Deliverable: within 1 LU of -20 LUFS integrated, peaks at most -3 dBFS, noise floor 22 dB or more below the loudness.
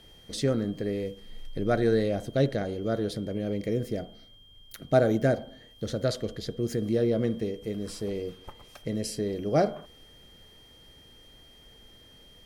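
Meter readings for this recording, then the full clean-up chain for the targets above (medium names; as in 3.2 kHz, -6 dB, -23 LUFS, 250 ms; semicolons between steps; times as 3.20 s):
steady tone 3.2 kHz; tone level -54 dBFS; loudness -29.0 LUFS; peak level -10.0 dBFS; loudness target -20.0 LUFS
-> band-stop 3.2 kHz, Q 30; trim +9 dB; peak limiter -3 dBFS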